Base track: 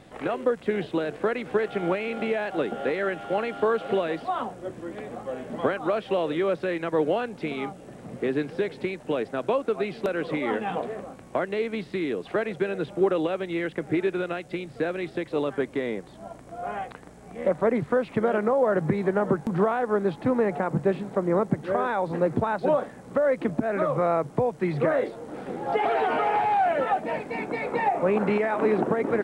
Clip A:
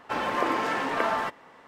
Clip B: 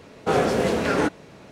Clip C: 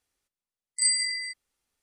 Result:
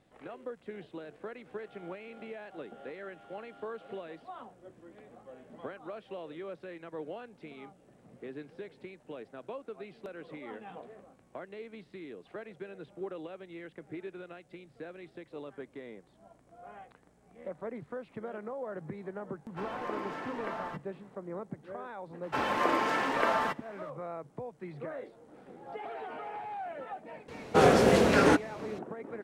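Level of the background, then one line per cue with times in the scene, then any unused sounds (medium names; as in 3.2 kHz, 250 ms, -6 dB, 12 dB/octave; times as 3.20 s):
base track -17 dB
19.47 s: add A -12.5 dB + tilt EQ -1.5 dB/octave
22.23 s: add A -2 dB
27.28 s: add B -0.5 dB
not used: C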